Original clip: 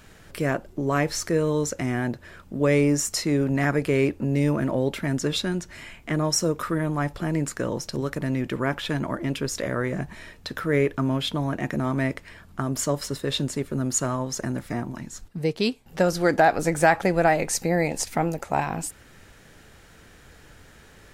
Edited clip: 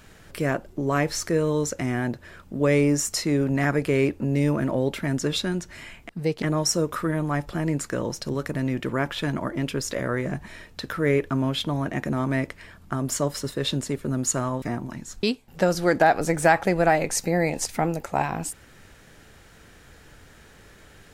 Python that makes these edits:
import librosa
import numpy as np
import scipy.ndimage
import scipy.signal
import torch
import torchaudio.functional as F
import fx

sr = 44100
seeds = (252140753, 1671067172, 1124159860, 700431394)

y = fx.edit(x, sr, fx.cut(start_s=14.29, length_s=0.38),
    fx.move(start_s=15.28, length_s=0.33, to_s=6.09), tone=tone)